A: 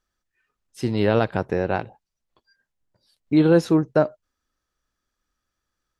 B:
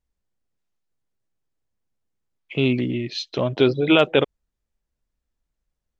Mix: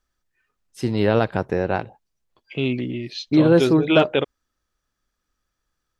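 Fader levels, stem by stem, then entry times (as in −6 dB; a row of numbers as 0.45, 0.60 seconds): +1.0, −3.0 decibels; 0.00, 0.00 seconds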